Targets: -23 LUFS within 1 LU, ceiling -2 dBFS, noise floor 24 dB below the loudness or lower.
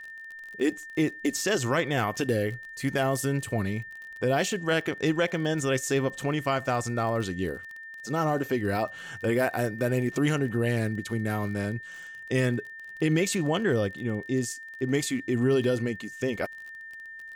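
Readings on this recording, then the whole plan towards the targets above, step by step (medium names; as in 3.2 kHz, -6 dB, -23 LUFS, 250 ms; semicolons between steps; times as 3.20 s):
tick rate 36 per s; steady tone 1.8 kHz; tone level -40 dBFS; loudness -28.0 LUFS; peak level -14.0 dBFS; loudness target -23.0 LUFS
-> de-click; band-stop 1.8 kHz, Q 30; trim +5 dB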